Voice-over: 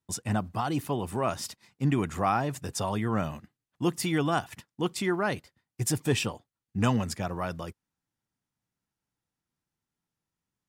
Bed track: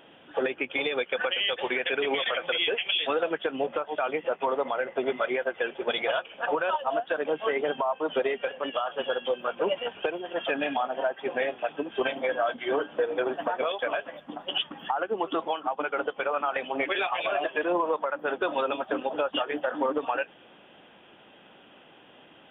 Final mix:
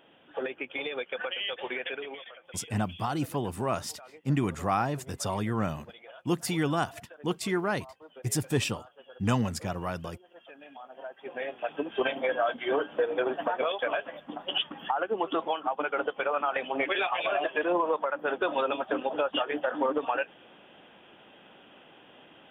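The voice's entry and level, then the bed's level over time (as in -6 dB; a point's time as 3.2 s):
2.45 s, -1.0 dB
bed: 1.87 s -6 dB
2.38 s -22 dB
10.61 s -22 dB
11.79 s -0.5 dB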